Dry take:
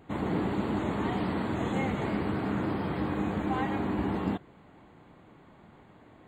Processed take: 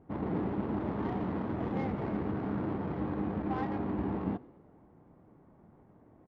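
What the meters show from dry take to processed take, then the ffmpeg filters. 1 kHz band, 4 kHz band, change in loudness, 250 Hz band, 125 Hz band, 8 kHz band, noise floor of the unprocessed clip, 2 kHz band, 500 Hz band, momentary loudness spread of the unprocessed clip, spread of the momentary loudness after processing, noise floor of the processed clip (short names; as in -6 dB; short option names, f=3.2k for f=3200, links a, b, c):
-5.0 dB, under -10 dB, -3.5 dB, -3.0 dB, -3.0 dB, n/a, -56 dBFS, -9.5 dB, -3.5 dB, 1 LU, 1 LU, -61 dBFS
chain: -filter_complex "[0:a]adynamicsmooth=sensitivity=1.5:basefreq=960,asplit=5[a][b][c][d][e];[b]adelay=106,afreqshift=47,volume=-23.5dB[f];[c]adelay=212,afreqshift=94,volume=-28.7dB[g];[d]adelay=318,afreqshift=141,volume=-33.9dB[h];[e]adelay=424,afreqshift=188,volume=-39.1dB[i];[a][f][g][h][i]amix=inputs=5:normalize=0,volume=-3dB"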